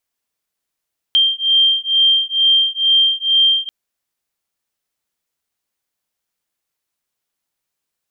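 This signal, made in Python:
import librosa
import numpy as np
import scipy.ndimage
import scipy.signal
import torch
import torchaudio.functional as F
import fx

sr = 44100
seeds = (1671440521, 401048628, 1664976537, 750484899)

y = fx.two_tone_beats(sr, length_s=2.54, hz=3170.0, beat_hz=2.2, level_db=-14.5)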